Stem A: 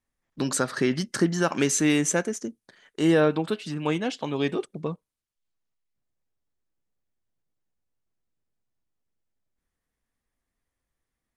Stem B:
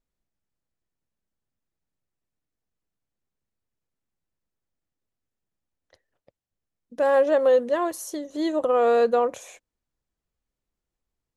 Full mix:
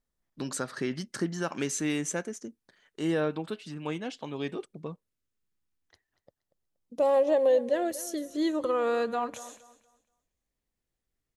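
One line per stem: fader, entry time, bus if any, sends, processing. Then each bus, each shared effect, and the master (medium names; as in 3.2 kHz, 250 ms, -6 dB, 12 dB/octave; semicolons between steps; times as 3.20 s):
-8.0 dB, 0.00 s, no send, no echo send, none
-1.0 dB, 0.00 s, no send, echo send -16.5 dB, compression 2:1, threshold -20 dBFS, peak gain reduction 3.5 dB; LFO notch saw down 0.32 Hz 470–2500 Hz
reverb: none
echo: feedback delay 237 ms, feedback 27%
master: none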